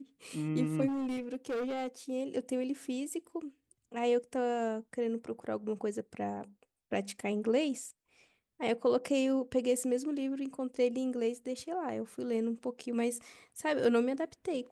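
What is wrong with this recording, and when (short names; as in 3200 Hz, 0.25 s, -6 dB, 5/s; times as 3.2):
0.87–1.88 clipped -31.5 dBFS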